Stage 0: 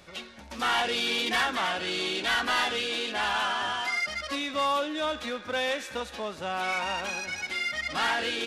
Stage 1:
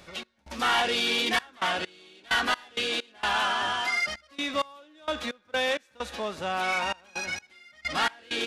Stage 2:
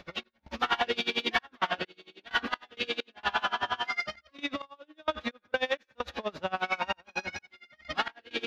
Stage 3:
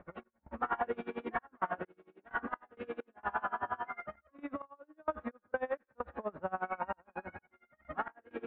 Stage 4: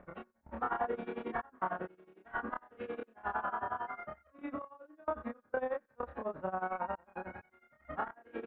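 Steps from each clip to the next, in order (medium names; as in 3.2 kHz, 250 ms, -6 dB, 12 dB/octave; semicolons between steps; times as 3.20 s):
trance gate "x.xxxx.x..x." 65 bpm -24 dB; trim +2 dB
in parallel at +0.5 dB: compression, threshold -34 dBFS, peak gain reduction 12 dB; on the sum: boxcar filter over 5 samples; logarithmic tremolo 11 Hz, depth 26 dB
low-pass 1.5 kHz 24 dB/octave; trim -4 dB
dynamic bell 2.4 kHz, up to -5 dB, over -50 dBFS, Q 1.1; doubling 27 ms -2.5 dB; trim -1 dB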